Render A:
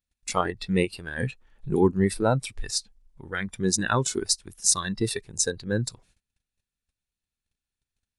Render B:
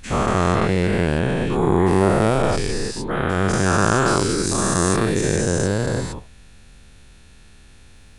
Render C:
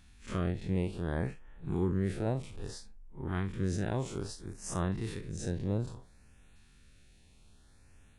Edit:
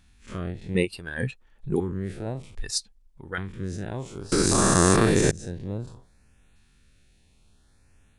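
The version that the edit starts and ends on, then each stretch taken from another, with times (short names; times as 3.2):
C
0.75–1.8 from A
2.55–3.38 from A
4.32–5.31 from B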